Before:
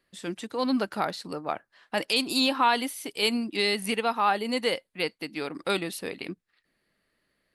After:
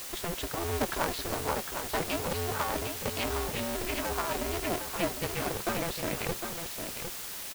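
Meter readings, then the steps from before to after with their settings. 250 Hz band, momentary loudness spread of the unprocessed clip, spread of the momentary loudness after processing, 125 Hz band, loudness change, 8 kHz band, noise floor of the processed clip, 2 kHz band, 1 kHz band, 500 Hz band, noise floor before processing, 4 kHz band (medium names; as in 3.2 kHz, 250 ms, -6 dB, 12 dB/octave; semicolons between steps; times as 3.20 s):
-6.5 dB, 12 LU, 4 LU, +7.0 dB, -4.5 dB, +4.5 dB, -40 dBFS, -4.5 dB, -6.0 dB, -3.0 dB, -77 dBFS, -8.0 dB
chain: low-pass that closes with the level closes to 870 Hz, closed at -21 dBFS; RIAA curve playback; harmonic-percussive split harmonic -12 dB; bass shelf 190 Hz -9.5 dB; in parallel at -0.5 dB: compressor with a negative ratio -44 dBFS; on the sum: waveshaping leveller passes 1; word length cut 6-bit, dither triangular; flange 0.31 Hz, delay 0 ms, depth 9.2 ms, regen -71%; on a send: delay 756 ms -7 dB; on the sum: polarity switched at an audio rate 170 Hz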